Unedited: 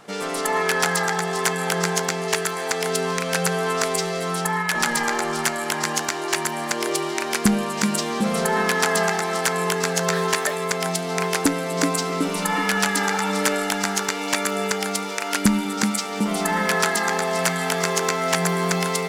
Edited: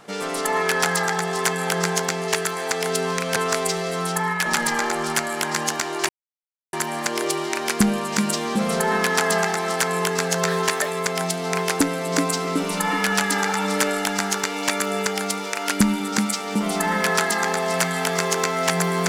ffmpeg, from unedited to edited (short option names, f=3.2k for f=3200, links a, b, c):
-filter_complex "[0:a]asplit=3[a][b][c];[a]atrim=end=3.362[d];[b]atrim=start=3.648:end=6.38,asetpts=PTS-STARTPTS,afade=t=out:st=2.728:d=0.004:c=hsin,apad=pad_dur=0.64[e];[c]atrim=start=6.38,asetpts=PTS-STARTPTS,afade=t=in:d=0.004:c=hsin[f];[e][f]concat=n=2:v=0:a=1[g];[d][g]acrossfade=d=0.004:c1=hsin:c2=hsin"